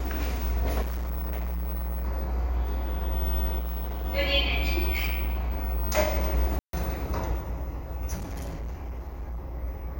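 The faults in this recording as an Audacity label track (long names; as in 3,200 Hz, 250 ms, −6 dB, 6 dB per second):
0.810000	2.060000	clipping −28 dBFS
3.580000	4.060000	clipping −28.5 dBFS
4.930000	5.980000	clipping −24.5 dBFS
6.590000	6.730000	drop-out 142 ms
8.150000	9.520000	clipping −31 dBFS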